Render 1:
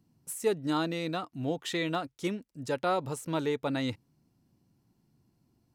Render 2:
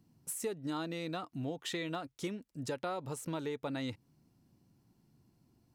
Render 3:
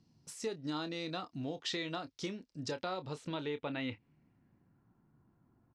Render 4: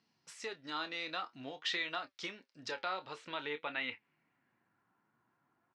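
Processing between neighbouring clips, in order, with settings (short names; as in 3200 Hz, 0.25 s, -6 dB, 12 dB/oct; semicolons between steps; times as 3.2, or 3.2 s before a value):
compressor 4:1, threshold -37 dBFS, peak gain reduction 12.5 dB; gain +1 dB
low-pass sweep 5100 Hz -> 1400 Hz, 2.76–4.93; doubler 27 ms -11.5 dB; gain -1.5 dB
band-pass 1900 Hz, Q 1; flange 0.51 Hz, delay 4.2 ms, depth 6.3 ms, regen +73%; gain +11 dB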